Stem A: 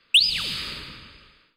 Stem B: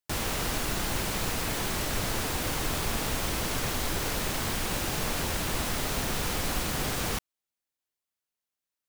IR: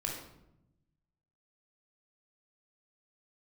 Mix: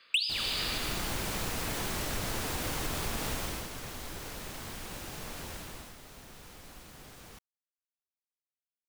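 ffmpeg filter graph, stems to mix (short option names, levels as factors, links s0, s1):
-filter_complex "[0:a]highpass=f=870:p=1,volume=1.06,asplit=2[s0][s1];[s1]volume=0.473[s2];[1:a]adelay=200,volume=0.75,afade=t=out:st=3.33:d=0.36:silence=0.354813,afade=t=out:st=5.53:d=0.43:silence=0.354813[s3];[2:a]atrim=start_sample=2205[s4];[s2][s4]afir=irnorm=-1:irlink=0[s5];[s0][s3][s5]amix=inputs=3:normalize=0,acompressor=threshold=0.0355:ratio=5"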